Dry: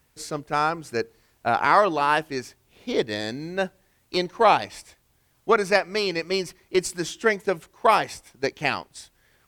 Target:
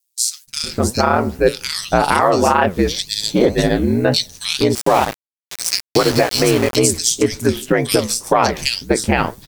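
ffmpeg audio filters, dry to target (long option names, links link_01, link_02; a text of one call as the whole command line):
ffmpeg -i in.wav -filter_complex "[0:a]bass=frequency=250:gain=12,treble=frequency=4000:gain=13,aeval=exprs='val(0)*sin(2*PI*60*n/s)':channel_layout=same,flanger=delay=6.9:depth=7.3:regen=72:speed=1.9:shape=sinusoidal,acrossover=split=2900[link_01][link_02];[link_01]adelay=470[link_03];[link_03][link_02]amix=inputs=2:normalize=0,adynamicequalizer=threshold=0.01:dfrequency=520:dqfactor=0.92:tfrequency=520:tqfactor=0.92:attack=5:release=100:ratio=0.375:range=2.5:mode=boostabove:tftype=bell,agate=range=-23dB:threshold=-52dB:ratio=16:detection=peak,acompressor=threshold=-24dB:ratio=10,asettb=1/sr,asplit=3[link_04][link_05][link_06];[link_04]atrim=end=4.754[link_07];[link_05]atrim=start=4.75:end=6.76,asetpts=PTS-STARTPTS,afade=type=in:duration=0.004:curve=qsin,afade=type=out:start_time=2.006:duration=0.004:curve=qsin,aeval=exprs='val(0)*gte(abs(val(0)),0.0188)':channel_layout=same[link_08];[link_06]atrim=start=6.756[link_09];[link_07][link_08]acrossfade=duration=0.004:curve1=hsin:curve2=qsin[link_10];[link_10][link_09]acrossfade=duration=0.004:curve1=qsin:curve2=hsin,alimiter=level_in=17.5dB:limit=-1dB:release=50:level=0:latency=1,volume=-1dB" out.wav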